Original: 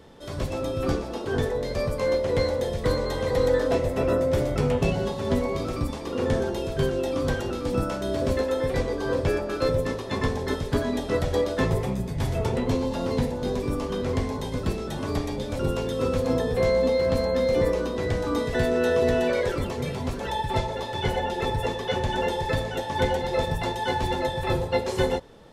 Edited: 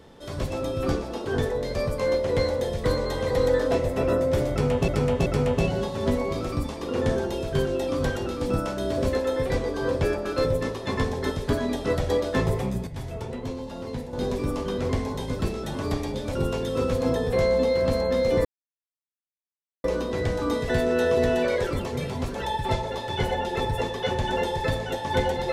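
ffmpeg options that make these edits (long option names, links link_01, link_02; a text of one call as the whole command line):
ffmpeg -i in.wav -filter_complex "[0:a]asplit=6[link_01][link_02][link_03][link_04][link_05][link_06];[link_01]atrim=end=4.882[link_07];[link_02]atrim=start=4.498:end=4.882[link_08];[link_03]atrim=start=4.498:end=12.112[link_09];[link_04]atrim=start=12.108:end=13.372,asetpts=PTS-STARTPTS,volume=-8dB[link_10];[link_05]atrim=start=13.368:end=17.69,asetpts=PTS-STARTPTS,afade=type=out:start_time=4.318:duration=0.004:curve=hsin,apad=pad_dur=1.39[link_11];[link_06]atrim=start=17.69,asetpts=PTS-STARTPTS,afade=type=in:duration=0.004:curve=hsin[link_12];[link_07][link_08]acrossfade=duration=0.004:curve1=hsin:curve2=hsin[link_13];[link_13][link_09]acrossfade=duration=0.004:curve1=hsin:curve2=hsin[link_14];[link_14][link_10]acrossfade=duration=0.004:curve1=hsin:curve2=hsin[link_15];[link_11][link_12]concat=n=2:v=0:a=1[link_16];[link_15][link_16]acrossfade=duration=0.004:curve1=hsin:curve2=hsin" out.wav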